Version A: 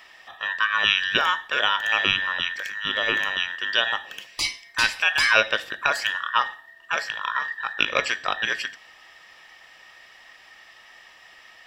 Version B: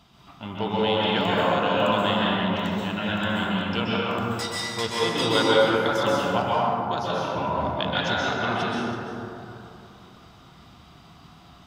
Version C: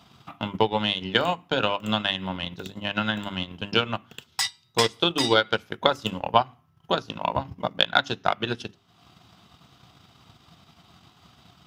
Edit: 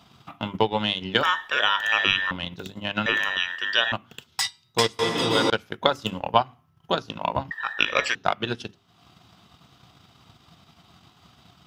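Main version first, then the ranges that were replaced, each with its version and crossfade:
C
1.23–2.31 from A
3.06–3.92 from A
4.99–5.5 from B
7.51–8.15 from A

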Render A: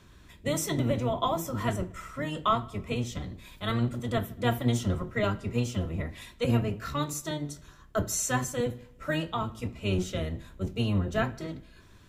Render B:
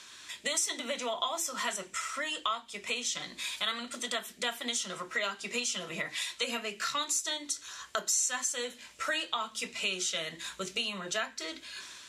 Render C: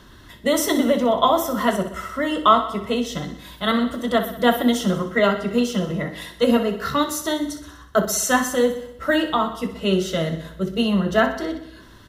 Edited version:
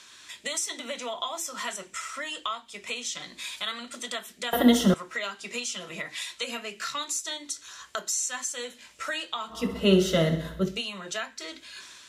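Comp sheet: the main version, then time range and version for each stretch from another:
B
4.53–4.94 from C
9.59–10.7 from C, crossfade 0.24 s
not used: A

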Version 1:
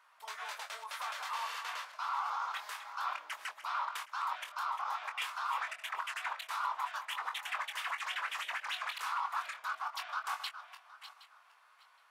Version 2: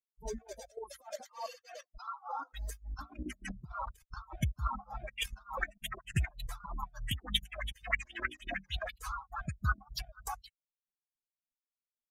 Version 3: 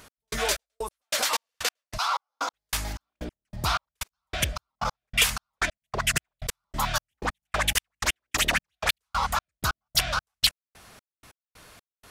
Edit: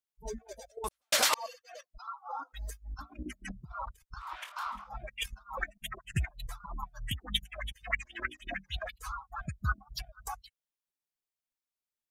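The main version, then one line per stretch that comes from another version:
2
0.84–1.34 from 3
4.28–4.78 from 1, crossfade 0.24 s

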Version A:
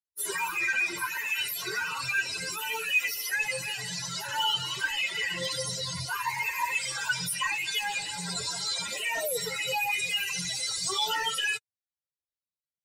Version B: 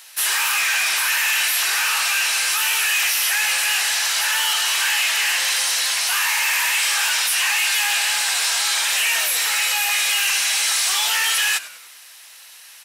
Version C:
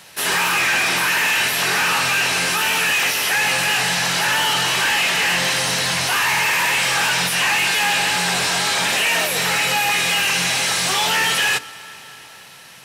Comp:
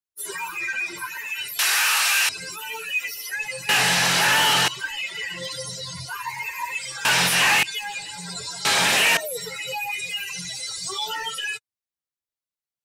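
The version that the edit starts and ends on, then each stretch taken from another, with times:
A
1.59–2.29 from B
3.69–4.68 from C
7.05–7.63 from C
8.65–9.17 from C

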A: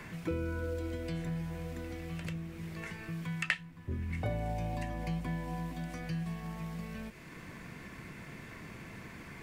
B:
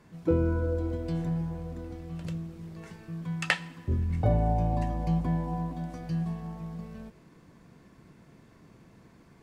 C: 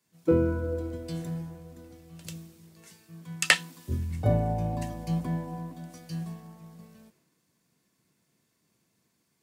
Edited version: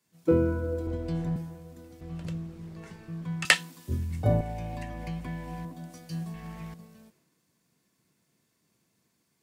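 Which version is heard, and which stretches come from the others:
C
0.87–1.36 from B
2.01–3.45 from B
4.41–5.65 from A
6.34–6.74 from A

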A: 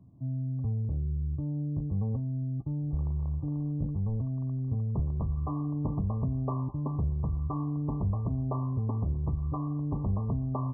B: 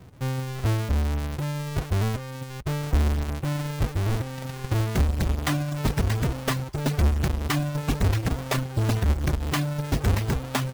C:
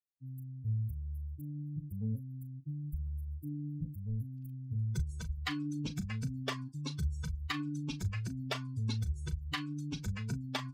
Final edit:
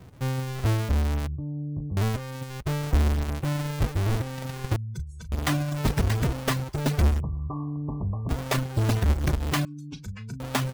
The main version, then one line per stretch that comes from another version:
B
1.27–1.97 from A
4.76–5.32 from C
7.2–8.29 from A
9.65–10.4 from C

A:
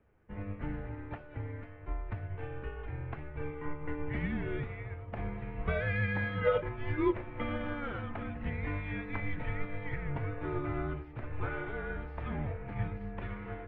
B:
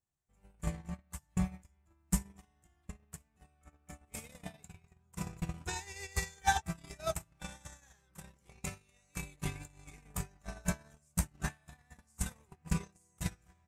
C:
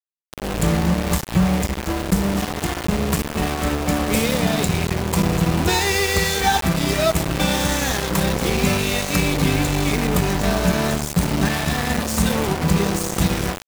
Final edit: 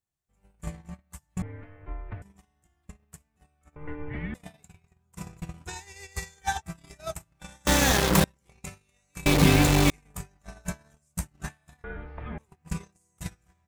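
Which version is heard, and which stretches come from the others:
B
1.42–2.22 from A
3.76–4.34 from A
7.67–8.24 from C
9.26–9.9 from C
11.84–12.38 from A

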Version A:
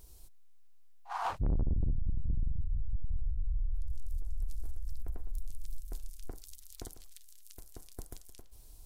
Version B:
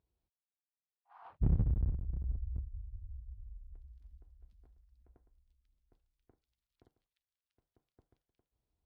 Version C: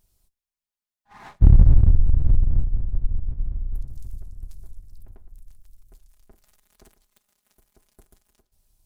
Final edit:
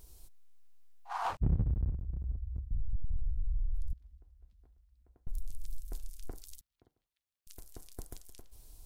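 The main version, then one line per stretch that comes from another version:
A
1.37–2.71 from B
3.93–5.27 from B
6.61–7.47 from B
not used: C

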